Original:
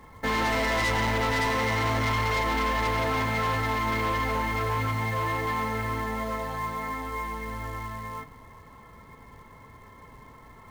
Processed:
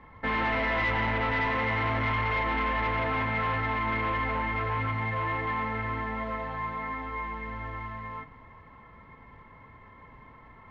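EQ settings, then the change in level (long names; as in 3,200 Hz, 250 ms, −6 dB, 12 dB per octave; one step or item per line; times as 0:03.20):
transistor ladder low-pass 3,300 Hz, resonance 25%
parametric band 420 Hz −3 dB 0.32 octaves
+3.5 dB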